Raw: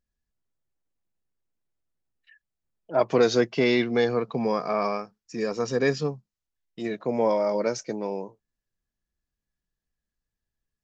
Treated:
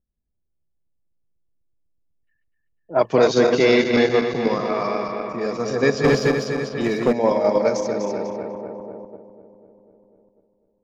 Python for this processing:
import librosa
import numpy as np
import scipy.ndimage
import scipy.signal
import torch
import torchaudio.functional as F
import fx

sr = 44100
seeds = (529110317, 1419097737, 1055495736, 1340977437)

p1 = fx.reverse_delay_fb(x, sr, ms=124, feedback_pct=80, wet_db=-5)
p2 = fx.leveller(p1, sr, passes=2, at=(6.04, 7.13))
p3 = fx.env_lowpass(p2, sr, base_hz=520.0, full_db=-19.5)
p4 = fx.level_steps(p3, sr, step_db=21)
y = p3 + (p4 * librosa.db_to_amplitude(-2.0))